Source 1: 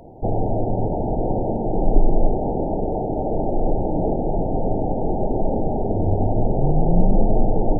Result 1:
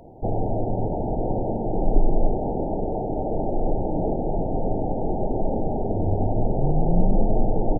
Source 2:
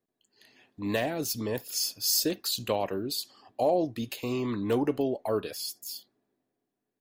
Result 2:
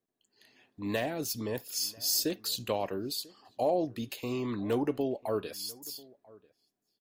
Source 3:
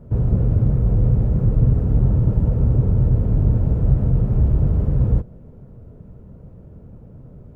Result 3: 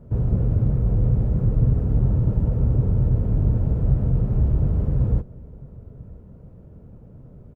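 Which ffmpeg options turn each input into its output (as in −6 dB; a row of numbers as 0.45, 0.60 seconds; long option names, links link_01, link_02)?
-filter_complex "[0:a]asplit=2[link_01][link_02];[link_02]adelay=991.3,volume=-23dB,highshelf=frequency=4000:gain=-22.3[link_03];[link_01][link_03]amix=inputs=2:normalize=0,volume=-3dB"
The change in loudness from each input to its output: −3.0, −3.0, −3.0 LU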